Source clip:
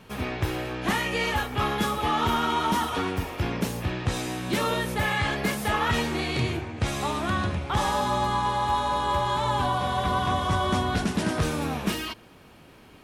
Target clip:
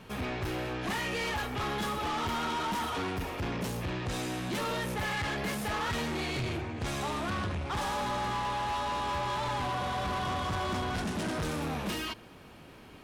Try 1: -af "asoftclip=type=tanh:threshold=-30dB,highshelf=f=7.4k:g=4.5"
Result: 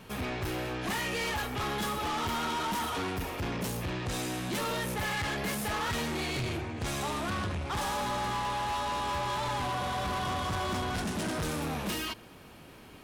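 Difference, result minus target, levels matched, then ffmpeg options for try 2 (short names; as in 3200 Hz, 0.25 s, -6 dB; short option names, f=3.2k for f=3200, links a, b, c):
8000 Hz band +3.5 dB
-af "asoftclip=type=tanh:threshold=-30dB,highshelf=f=7.4k:g=-3"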